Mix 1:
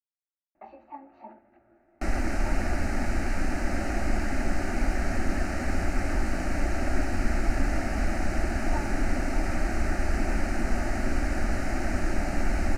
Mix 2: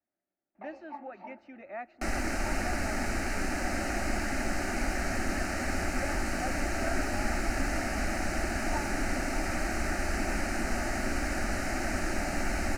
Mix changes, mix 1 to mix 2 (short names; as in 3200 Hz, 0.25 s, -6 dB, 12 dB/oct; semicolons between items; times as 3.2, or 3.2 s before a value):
speech: unmuted; master: add tilt +1.5 dB/oct